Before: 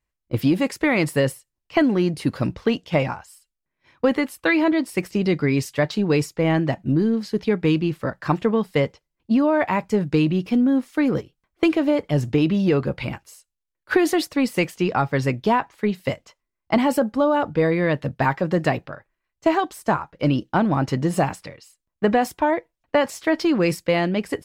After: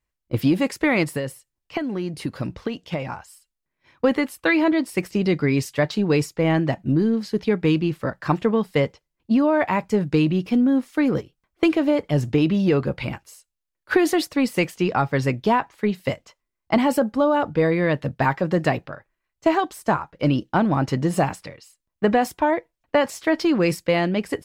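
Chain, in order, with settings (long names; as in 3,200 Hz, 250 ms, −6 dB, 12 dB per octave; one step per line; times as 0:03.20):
0:01.03–0:03.13: downward compressor 10 to 1, threshold −23 dBFS, peak gain reduction 11 dB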